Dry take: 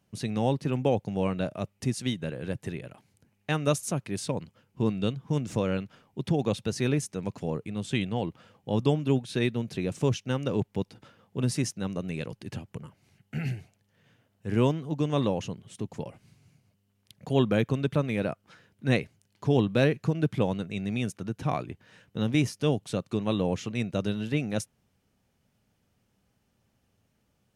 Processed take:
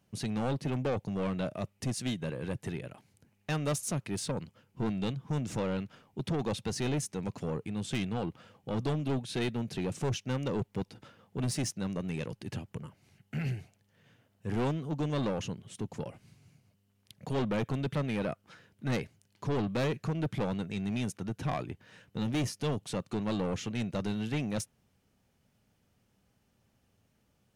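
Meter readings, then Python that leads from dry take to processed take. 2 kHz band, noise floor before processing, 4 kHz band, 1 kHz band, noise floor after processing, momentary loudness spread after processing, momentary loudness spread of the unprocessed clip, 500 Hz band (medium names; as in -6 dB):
-5.0 dB, -73 dBFS, -3.5 dB, -3.5 dB, -73 dBFS, 9 LU, 14 LU, -6.0 dB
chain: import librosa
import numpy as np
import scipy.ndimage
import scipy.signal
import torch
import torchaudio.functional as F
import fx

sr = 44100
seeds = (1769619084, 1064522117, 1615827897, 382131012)

y = 10.0 ** (-26.5 / 20.0) * np.tanh(x / 10.0 ** (-26.5 / 20.0))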